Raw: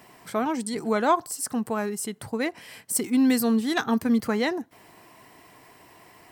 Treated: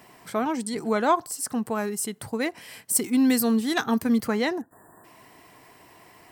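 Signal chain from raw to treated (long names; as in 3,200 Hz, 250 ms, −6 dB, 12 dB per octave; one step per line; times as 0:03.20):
0:01.75–0:04.26: high-shelf EQ 6,300 Hz +4.5 dB
0:04.61–0:05.04: time-frequency box erased 1,900–7,100 Hz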